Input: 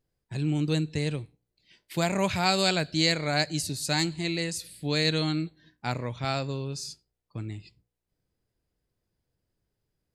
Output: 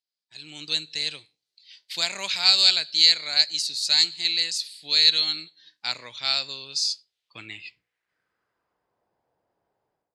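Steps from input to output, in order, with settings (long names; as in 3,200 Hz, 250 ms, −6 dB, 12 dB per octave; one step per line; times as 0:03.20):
automatic gain control gain up to 16 dB
band-pass filter sweep 4,300 Hz → 810 Hz, 0:06.93–0:09.04
level +2.5 dB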